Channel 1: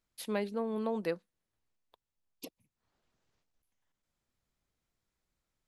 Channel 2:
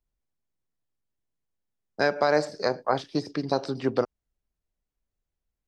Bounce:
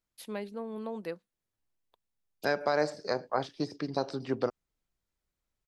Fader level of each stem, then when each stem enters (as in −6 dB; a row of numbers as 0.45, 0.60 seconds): −4.0, −5.5 decibels; 0.00, 0.45 seconds